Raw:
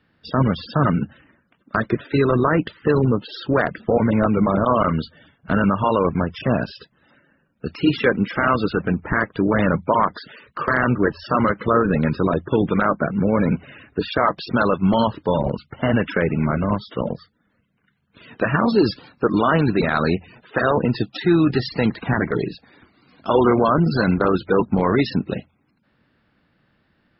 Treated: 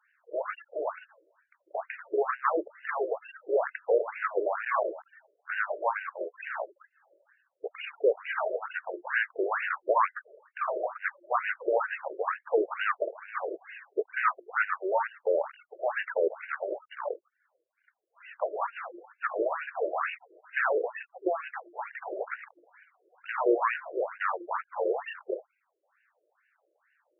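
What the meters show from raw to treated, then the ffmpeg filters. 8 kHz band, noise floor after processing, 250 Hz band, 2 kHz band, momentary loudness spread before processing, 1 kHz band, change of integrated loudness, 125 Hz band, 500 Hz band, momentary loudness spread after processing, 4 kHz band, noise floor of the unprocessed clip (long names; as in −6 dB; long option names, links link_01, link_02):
can't be measured, −79 dBFS, −23.5 dB, −7.0 dB, 9 LU, −9.0 dB, −11.0 dB, below −40 dB, −8.5 dB, 11 LU, −18.0 dB, −66 dBFS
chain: -af "aeval=exprs='clip(val(0),-1,0.0531)':channel_layout=same,bandreject=frequency=50:width_type=h:width=6,bandreject=frequency=100:width_type=h:width=6,bandreject=frequency=150:width_type=h:width=6,bandreject=frequency=200:width_type=h:width=6,bandreject=frequency=250:width_type=h:width=6,bandreject=frequency=300:width_type=h:width=6,bandreject=frequency=350:width_type=h:width=6,afftfilt=real='re*between(b*sr/1024,450*pow(2100/450,0.5+0.5*sin(2*PI*2.2*pts/sr))/1.41,450*pow(2100/450,0.5+0.5*sin(2*PI*2.2*pts/sr))*1.41)':imag='im*between(b*sr/1024,450*pow(2100/450,0.5+0.5*sin(2*PI*2.2*pts/sr))/1.41,450*pow(2100/450,0.5+0.5*sin(2*PI*2.2*pts/sr))*1.41)':win_size=1024:overlap=0.75"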